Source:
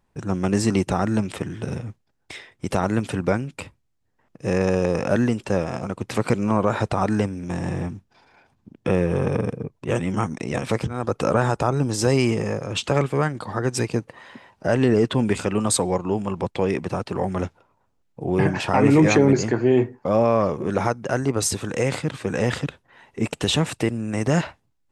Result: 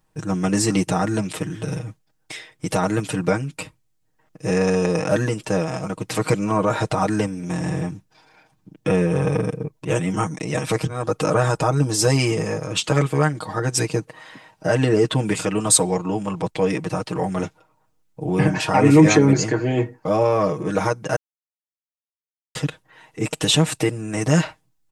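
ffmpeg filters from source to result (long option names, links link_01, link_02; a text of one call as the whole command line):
ffmpeg -i in.wav -filter_complex "[0:a]asplit=3[link_01][link_02][link_03];[link_01]atrim=end=21.16,asetpts=PTS-STARTPTS,afade=type=out:start_time=21.156:duration=0.004:curve=hsin[link_04];[link_02]atrim=start=21.16:end=22.55,asetpts=PTS-STARTPTS,volume=0[link_05];[link_03]atrim=start=22.55,asetpts=PTS-STARTPTS,afade=type=in:duration=0.004:curve=hsin[link_06];[link_04][link_05][link_06]concat=n=3:v=0:a=1,highshelf=frequency=5400:gain=8.5,aecho=1:1:6.4:0.85,volume=-1dB" out.wav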